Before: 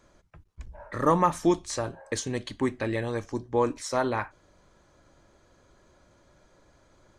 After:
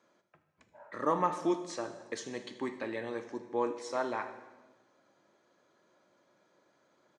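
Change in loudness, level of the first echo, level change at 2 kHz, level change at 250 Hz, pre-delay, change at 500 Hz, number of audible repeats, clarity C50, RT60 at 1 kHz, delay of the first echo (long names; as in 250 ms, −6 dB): −7.0 dB, −18.5 dB, −6.5 dB, −8.0 dB, 7 ms, −6.5 dB, 1, 10.0 dB, 1.2 s, 78 ms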